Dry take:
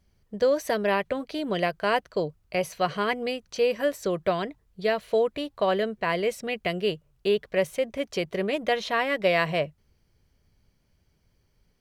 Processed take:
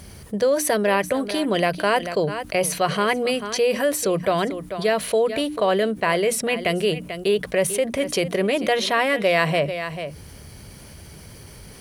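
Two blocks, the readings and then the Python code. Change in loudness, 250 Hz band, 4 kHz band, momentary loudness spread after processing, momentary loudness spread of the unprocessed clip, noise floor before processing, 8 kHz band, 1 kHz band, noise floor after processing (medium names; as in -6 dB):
+5.0 dB, +6.5 dB, +6.5 dB, 5 LU, 6 LU, -68 dBFS, +16.0 dB, +5.0 dB, -43 dBFS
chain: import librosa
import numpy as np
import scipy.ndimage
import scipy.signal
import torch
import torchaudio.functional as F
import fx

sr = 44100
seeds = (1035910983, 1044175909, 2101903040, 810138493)

y = scipy.signal.sosfilt(scipy.signal.butter(2, 58.0, 'highpass', fs=sr, output='sos'), x)
y = fx.peak_eq(y, sr, hz=9800.0, db=13.5, octaves=0.39)
y = fx.hum_notches(y, sr, base_hz=60, count=5)
y = y + 10.0 ** (-19.0 / 20.0) * np.pad(y, (int(441 * sr / 1000.0), 0))[:len(y)]
y = fx.env_flatten(y, sr, amount_pct=50)
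y = F.gain(torch.from_numpy(y), 2.0).numpy()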